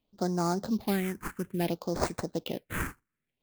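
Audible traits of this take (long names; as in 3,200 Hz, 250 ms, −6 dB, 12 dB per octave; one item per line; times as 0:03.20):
aliases and images of a low sample rate 5,700 Hz, jitter 20%
phaser sweep stages 4, 0.59 Hz, lowest notch 610–3,000 Hz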